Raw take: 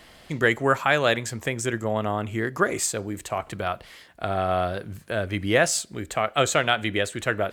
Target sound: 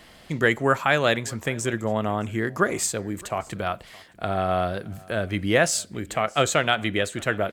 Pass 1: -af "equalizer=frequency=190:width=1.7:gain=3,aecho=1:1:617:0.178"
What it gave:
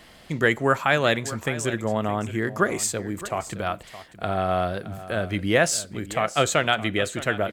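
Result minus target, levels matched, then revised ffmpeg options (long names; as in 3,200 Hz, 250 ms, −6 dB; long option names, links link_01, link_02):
echo-to-direct +9 dB
-af "equalizer=frequency=190:width=1.7:gain=3,aecho=1:1:617:0.0631"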